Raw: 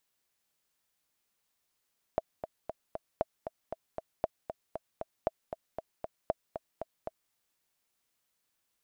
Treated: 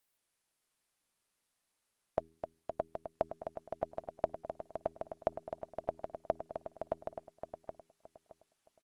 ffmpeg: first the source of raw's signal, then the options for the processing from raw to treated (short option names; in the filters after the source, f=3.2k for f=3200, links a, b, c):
-f lavfi -i "aevalsrc='pow(10,(-14.5-9*gte(mod(t,4*60/233),60/233))/20)*sin(2*PI*647*mod(t,60/233))*exp(-6.91*mod(t,60/233)/0.03)':d=5.15:s=44100"
-filter_complex "[0:a]bandreject=f=81.03:t=h:w=4,bandreject=f=162.06:t=h:w=4,bandreject=f=243.09:t=h:w=4,bandreject=f=324.12:t=h:w=4,bandreject=f=405.15:t=h:w=4,asplit=2[a][b];[b]adelay=619,lowpass=f=2.5k:p=1,volume=-3dB,asplit=2[c][d];[d]adelay=619,lowpass=f=2.5k:p=1,volume=0.27,asplit=2[e][f];[f]adelay=619,lowpass=f=2.5k:p=1,volume=0.27,asplit=2[g][h];[h]adelay=619,lowpass=f=2.5k:p=1,volume=0.27[i];[c][e][g][i]amix=inputs=4:normalize=0[j];[a][j]amix=inputs=2:normalize=0" -ar 48000 -c:a libopus -b:a 32k